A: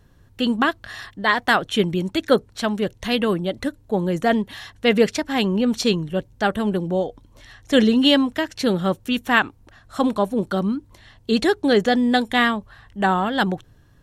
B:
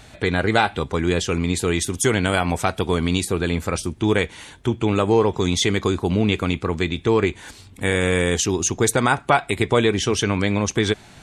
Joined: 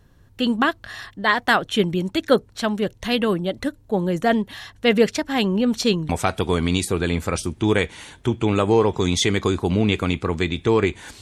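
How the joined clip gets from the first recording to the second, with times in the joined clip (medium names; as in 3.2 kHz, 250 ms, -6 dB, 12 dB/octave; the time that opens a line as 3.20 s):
A
6.09 s: go over to B from 2.49 s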